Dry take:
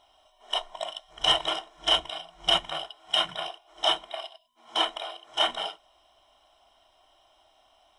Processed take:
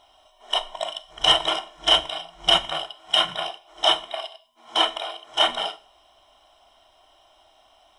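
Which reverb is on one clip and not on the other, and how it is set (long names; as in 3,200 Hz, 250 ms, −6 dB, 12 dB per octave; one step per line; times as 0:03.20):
four-comb reverb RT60 0.43 s, combs from 29 ms, DRR 15.5 dB
level +5 dB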